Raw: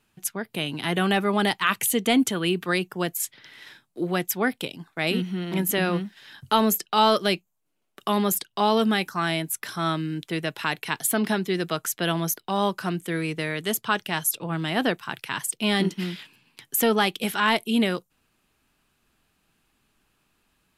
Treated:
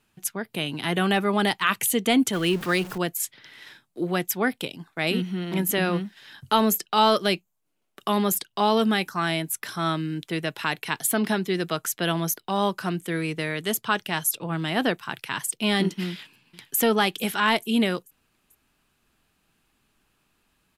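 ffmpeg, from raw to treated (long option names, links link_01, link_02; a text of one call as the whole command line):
ffmpeg -i in.wav -filter_complex "[0:a]asettb=1/sr,asplit=3[link_01][link_02][link_03];[link_01]atrim=end=2.334[link_04];[link_02]atrim=start=2.33:end=2.98,asetpts=PTS-STARTPTS,afade=type=in:duration=0.004:curve=qsin,afade=type=out:start_time=0.646:duration=0.004:curve=qsin,aeval=exprs='val(0)+0.5*0.0224*sgn(val(0))':channel_layout=same[link_05];[link_03]atrim=start=2.976[link_06];[link_04][link_05]acrossfade=duration=0.004:curve1=hsin:curve2=qsin[link_07];[link_07][link_06]acrossfade=duration=0.004:curve1=qsin:curve2=hsin,asplit=2[link_08][link_09];[link_09]afade=type=in:start_time=16.09:duration=0.01,afade=type=out:start_time=16.78:duration=0.01,aecho=0:1:440|880|1320|1760:0.141254|0.0706269|0.0353134|0.0176567[link_10];[link_08][link_10]amix=inputs=2:normalize=0" out.wav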